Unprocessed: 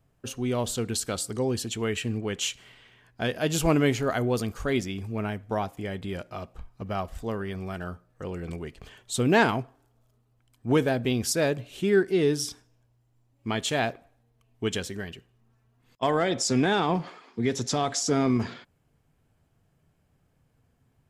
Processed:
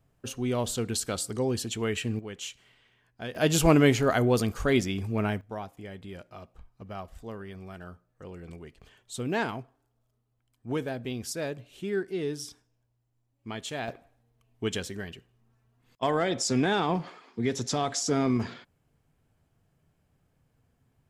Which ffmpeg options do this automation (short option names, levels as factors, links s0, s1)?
-af "asetnsamples=n=441:p=0,asendcmd='2.19 volume volume -9dB;3.35 volume volume 2.5dB;5.41 volume volume -8.5dB;13.88 volume volume -2dB',volume=0.891"